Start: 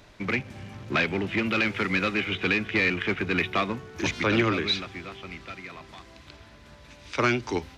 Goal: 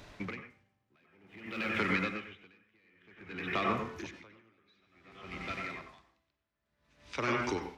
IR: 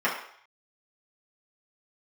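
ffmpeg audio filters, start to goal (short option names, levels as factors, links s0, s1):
-filter_complex "[0:a]acompressor=threshold=0.0398:ratio=6,asettb=1/sr,asplit=3[s0][s1][s2];[s0]atrim=end=0.504[s3];[s1]atrim=start=0.5:end=1.77,asetpts=PTS-STARTPTS,afade=t=in:d=0.004:c=qsin,afade=t=out:st=1.266:d=0.004:c=qsin,aeval=exprs='sgn(val(0))*max(abs(val(0))-0.00188,0)':c=same[s4];[s2]atrim=start=1.766[s5];[s3][s4]acrossfade=d=0.004:c1=hsin:c2=qsin[s6];[s6][s5]acrossfade=d=0.004:c1=qsin:c2=hsin,asplit=2[s7][s8];[1:a]atrim=start_sample=2205,adelay=90[s9];[s8][s9]afir=irnorm=-1:irlink=0,volume=0.178[s10];[s7][s10]amix=inputs=2:normalize=0,aeval=exprs='val(0)*pow(10,-39*(0.5-0.5*cos(2*PI*0.54*n/s))/20)':c=same"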